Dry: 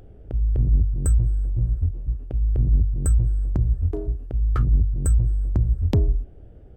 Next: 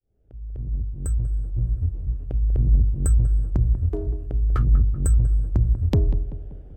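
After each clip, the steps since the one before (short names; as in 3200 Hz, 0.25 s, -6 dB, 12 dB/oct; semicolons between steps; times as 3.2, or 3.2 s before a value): opening faded in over 2.12 s; darkening echo 0.192 s, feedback 51%, low-pass 1500 Hz, level -12 dB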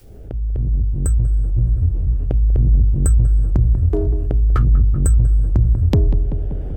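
fast leveller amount 50%; gain +2.5 dB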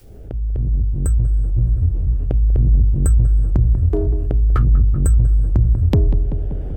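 dynamic EQ 6300 Hz, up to -4 dB, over -50 dBFS, Q 0.89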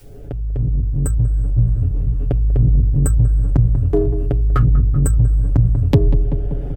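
comb 7.1 ms; gain +1.5 dB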